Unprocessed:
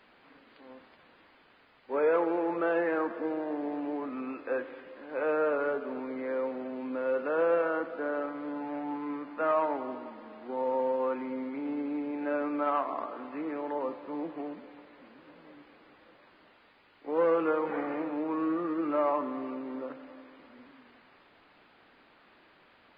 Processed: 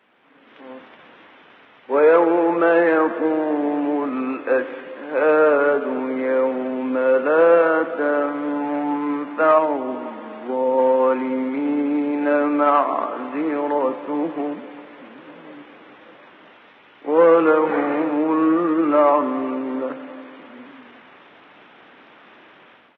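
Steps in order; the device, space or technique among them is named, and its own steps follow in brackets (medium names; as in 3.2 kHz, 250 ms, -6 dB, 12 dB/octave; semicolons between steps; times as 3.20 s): 9.58–10.78 s: dynamic bell 1.4 kHz, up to -7 dB, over -43 dBFS, Q 0.71; Bluetooth headset (high-pass 140 Hz 12 dB/octave; level rider gain up to 13 dB; resampled via 8 kHz; SBC 64 kbps 32 kHz)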